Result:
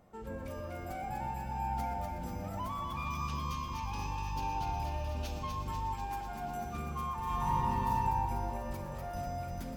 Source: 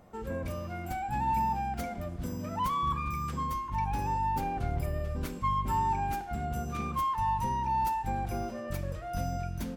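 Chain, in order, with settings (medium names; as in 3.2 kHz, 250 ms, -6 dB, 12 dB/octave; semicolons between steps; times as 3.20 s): 2.90–5.49 s: time-frequency box 2.4–6.8 kHz +11 dB; 5.94–6.62 s: high-pass 230 Hz 12 dB/octave; compression, threshold -31 dBFS, peak gain reduction 6.5 dB; echo whose repeats swap between lows and highs 123 ms, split 950 Hz, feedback 83%, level -3 dB; 7.23–7.95 s: reverb throw, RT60 1.5 s, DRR -6.5 dB; bit-crushed delay 122 ms, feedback 80%, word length 9-bit, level -14 dB; trim -6 dB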